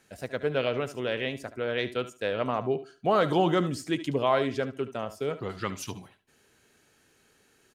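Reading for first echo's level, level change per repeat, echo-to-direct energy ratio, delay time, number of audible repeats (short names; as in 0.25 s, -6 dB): -13.5 dB, no steady repeat, -13.5 dB, 72 ms, 2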